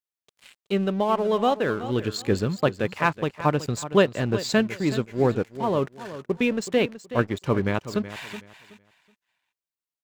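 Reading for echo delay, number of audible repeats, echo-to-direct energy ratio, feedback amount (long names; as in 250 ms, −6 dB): 374 ms, 2, −13.5 dB, 24%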